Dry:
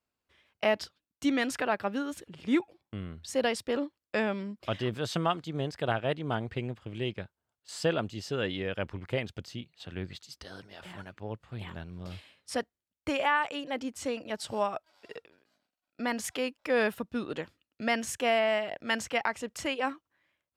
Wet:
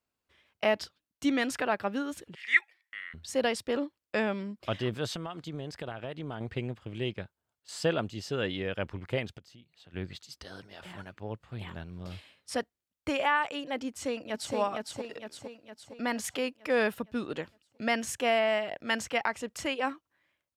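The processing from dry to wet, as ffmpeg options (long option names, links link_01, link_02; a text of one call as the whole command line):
ffmpeg -i in.wav -filter_complex "[0:a]asettb=1/sr,asplit=3[link_01][link_02][link_03];[link_01]atrim=end=2.354[link_04];[link_02]atrim=start=2.35:end=3.14,asetpts=PTS-STARTPTS,afade=type=in:duration=0.004:curve=qsin,afade=type=out:start_time=0.786:duration=0.004:curve=qsin,highpass=frequency=1900:width_type=q:width=15[link_05];[link_03]atrim=start=3.136[link_06];[link_04][link_05]acrossfade=duration=0.004:curve1=hsin:curve2=qsin[link_07];[link_07][link_06]acrossfade=duration=0.004:curve1=qsin:curve2=hsin,asettb=1/sr,asplit=3[link_08][link_09][link_10];[link_08]atrim=end=5.134[link_11];[link_09]atrim=start=5.13:end=6.41,asetpts=PTS-STARTPTS,afade=type=in:duration=0.004:curve=qsin,afade=type=out:start_time=1.276:duration=0.004:curve=qsin,acompressor=threshold=-33dB:ratio=12:attack=3.2:release=140:knee=1:detection=peak[link_12];[link_10]atrim=start=6.406[link_13];[link_11][link_12]acrossfade=duration=0.004:curve1=hsin:curve2=qsin[link_14];[link_14][link_13]acrossfade=duration=0.004:curve1=qsin:curve2=hsin,asplit=3[link_15][link_16][link_17];[link_15]afade=type=out:start_time=9.37:duration=0.02[link_18];[link_16]acompressor=threshold=-58dB:ratio=2.5:attack=3.2:release=140:knee=1:detection=peak,afade=type=in:start_time=9.37:duration=0.02,afade=type=out:start_time=9.93:duration=0.02[link_19];[link_17]afade=type=in:start_time=9.93:duration=0.02[link_20];[link_18][link_19][link_20]amix=inputs=3:normalize=0,asplit=2[link_21][link_22];[link_22]afade=type=in:start_time=13.88:duration=0.01,afade=type=out:start_time=14.55:duration=0.01,aecho=0:1:460|920|1380|1840|2300|2760|3220|3680:0.707946|0.38937|0.214154|0.117784|0.0647815|0.0356298|0.0195964|0.010778[link_23];[link_21][link_23]amix=inputs=2:normalize=0" out.wav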